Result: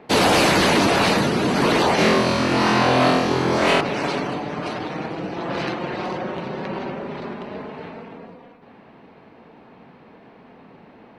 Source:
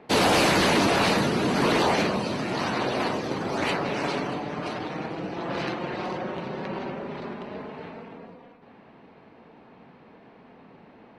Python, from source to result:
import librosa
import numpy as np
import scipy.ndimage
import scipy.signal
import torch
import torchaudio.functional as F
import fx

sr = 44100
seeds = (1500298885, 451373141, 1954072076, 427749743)

y = fx.room_flutter(x, sr, wall_m=4.0, rt60_s=0.89, at=(1.96, 3.81))
y = F.gain(torch.from_numpy(y), 4.0).numpy()